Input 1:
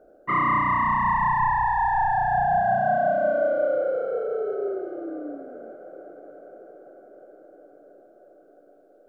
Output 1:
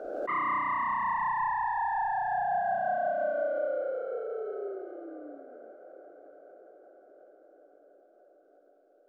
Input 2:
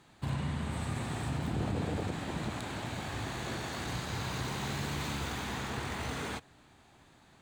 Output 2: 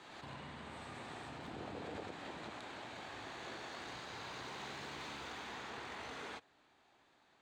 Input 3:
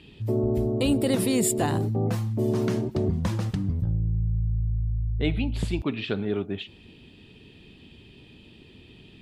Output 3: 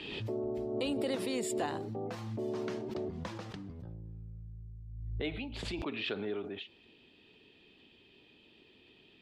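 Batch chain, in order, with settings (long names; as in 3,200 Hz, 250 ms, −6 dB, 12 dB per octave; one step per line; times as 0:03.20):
three-way crossover with the lows and the highs turned down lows −15 dB, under 290 Hz, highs −15 dB, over 6,400 Hz
background raised ahead of every attack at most 35 dB per second
level −7.5 dB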